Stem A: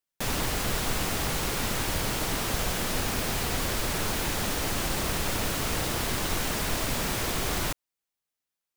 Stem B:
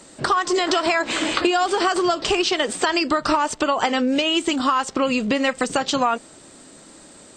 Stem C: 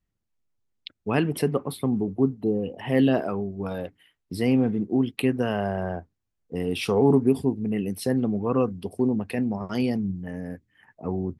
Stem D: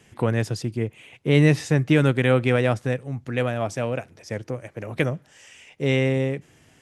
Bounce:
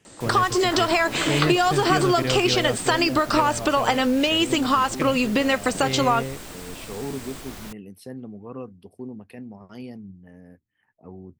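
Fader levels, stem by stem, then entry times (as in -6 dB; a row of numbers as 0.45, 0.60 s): -11.0, -0.5, -13.0, -7.5 dB; 0.00, 0.05, 0.00, 0.00 s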